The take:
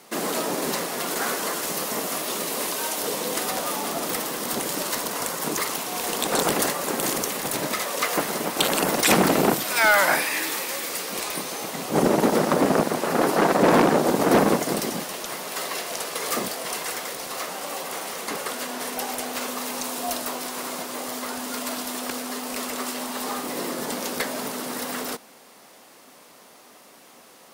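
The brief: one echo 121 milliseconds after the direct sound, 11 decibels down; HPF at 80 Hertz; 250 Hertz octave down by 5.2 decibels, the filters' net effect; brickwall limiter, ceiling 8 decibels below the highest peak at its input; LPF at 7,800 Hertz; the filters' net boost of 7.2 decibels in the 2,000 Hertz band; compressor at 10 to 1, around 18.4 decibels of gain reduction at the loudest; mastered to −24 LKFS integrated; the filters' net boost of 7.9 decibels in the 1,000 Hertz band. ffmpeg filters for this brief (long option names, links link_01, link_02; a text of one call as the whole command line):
ffmpeg -i in.wav -af "highpass=80,lowpass=7800,equalizer=frequency=250:width_type=o:gain=-7.5,equalizer=frequency=1000:width_type=o:gain=9,equalizer=frequency=2000:width_type=o:gain=6,acompressor=threshold=-26dB:ratio=10,alimiter=limit=-21.5dB:level=0:latency=1,aecho=1:1:121:0.282,volume=6.5dB" out.wav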